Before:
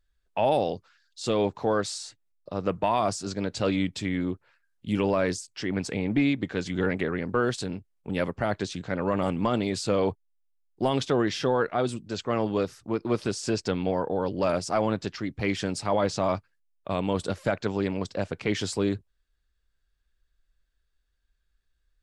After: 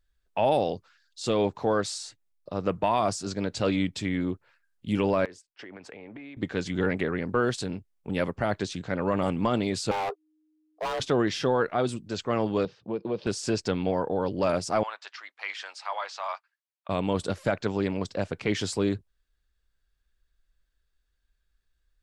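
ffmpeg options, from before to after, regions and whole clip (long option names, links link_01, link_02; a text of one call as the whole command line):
ffmpeg -i in.wav -filter_complex "[0:a]asettb=1/sr,asplit=3[link_01][link_02][link_03];[link_01]atrim=end=5.254[link_04];[link_02]atrim=start=5.25:end=6.37,asetpts=PTS-STARTPTS,afade=type=in:duration=0.004:curve=qsin,afade=type=out:start_time=1.116:duration=0.004:curve=qsin,agate=range=-15dB:threshold=-38dB:ratio=16:release=100:detection=peak,acrossover=split=350 2800:gain=0.2 1 0.158[link_05][link_06][link_07];[link_05][link_06][link_07]amix=inputs=3:normalize=0,acompressor=threshold=-39dB:ratio=16:attack=3.2:release=140:knee=1:detection=peak[link_08];[link_03]atrim=start=6.366[link_09];[link_04][link_08]acrossfade=duration=0.004:curve1=hsin:curve2=qsin[link_10];[link_10][link_09]acrossfade=duration=0.004:curve1=qsin:curve2=hsin,asettb=1/sr,asplit=3[link_11][link_12][link_13];[link_11]atrim=end=9.914[link_14];[link_12]atrim=start=9.91:end=11,asetpts=PTS-STARTPTS,afade=type=in:duration=0.004:curve=qsin,afade=type=out:start_time=1.086:duration=0.004:curve=qsin,highshelf=frequency=5300:gain=-10,afreqshift=310,volume=27dB,asoftclip=hard,volume=-27dB[link_15];[link_13]atrim=start=10.996[link_16];[link_14][link_15]acrossfade=duration=0.004:curve1=hsin:curve2=qsin[link_17];[link_17][link_16]acrossfade=duration=0.004:curve1=qsin:curve2=hsin,asettb=1/sr,asplit=3[link_18][link_19][link_20];[link_18]atrim=end=12.654[link_21];[link_19]atrim=start=12.65:end=13.27,asetpts=PTS-STARTPTS,afade=type=in:duration=0.004:curve=qsin,afade=type=out:start_time=0.616:duration=0.004:curve=qsin,acompressor=threshold=-27dB:ratio=3:attack=3.2:release=140:knee=1:detection=peak,highpass=120,equalizer=frequency=190:width_type=q:width=4:gain=5,equalizer=frequency=270:width_type=q:width=4:gain=-5,equalizer=frequency=490:width_type=q:width=4:gain=7,equalizer=frequency=1300:width_type=q:width=4:gain=-10,equalizer=frequency=2000:width_type=q:width=4:gain=-7,lowpass=frequency=4000:width=0.5412,lowpass=frequency=4000:width=1.3066[link_22];[link_20]atrim=start=13.266[link_23];[link_21][link_22]acrossfade=duration=0.004:curve1=hsin:curve2=qsin[link_24];[link_24][link_23]acrossfade=duration=0.004:curve1=qsin:curve2=hsin,asettb=1/sr,asplit=3[link_25][link_26][link_27];[link_25]atrim=end=14.834[link_28];[link_26]atrim=start=14.83:end=16.89,asetpts=PTS-STARTPTS,afade=type=in:duration=0.004:curve=qsin,afade=type=out:start_time=2.056:duration=0.004:curve=qsin,acrossover=split=6400[link_29][link_30];[link_30]acompressor=threshold=-51dB:ratio=4:attack=1:release=60[link_31];[link_29][link_31]amix=inputs=2:normalize=0,highpass=frequency=880:width=0.5412,highpass=frequency=880:width=1.3066,highshelf=frequency=5800:gain=-11[link_32];[link_27]atrim=start=16.886[link_33];[link_28][link_32]acrossfade=duration=0.004:curve1=hsin:curve2=qsin[link_34];[link_34][link_33]acrossfade=duration=0.004:curve1=qsin:curve2=hsin" out.wav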